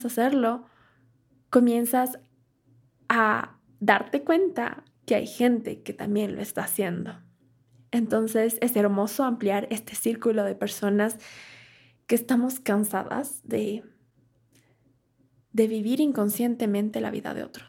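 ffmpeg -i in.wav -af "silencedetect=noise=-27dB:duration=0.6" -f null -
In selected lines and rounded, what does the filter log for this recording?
silence_start: 0.56
silence_end: 1.53 | silence_duration: 0.96
silence_start: 2.12
silence_end: 3.10 | silence_duration: 0.98
silence_start: 7.09
silence_end: 7.93 | silence_duration: 0.84
silence_start: 11.14
silence_end: 12.09 | silence_duration: 0.96
silence_start: 13.76
silence_end: 15.58 | silence_duration: 1.81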